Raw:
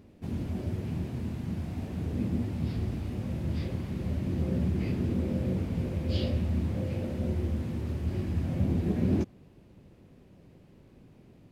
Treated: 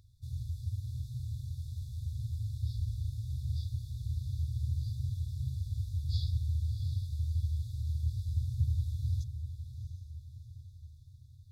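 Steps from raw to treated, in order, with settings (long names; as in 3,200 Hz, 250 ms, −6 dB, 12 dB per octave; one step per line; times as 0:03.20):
on a send: feedback delay with all-pass diffusion 709 ms, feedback 49%, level −10 dB
on the sum: brick-wall band-stop 130–3,400 Hz
level −1.5 dB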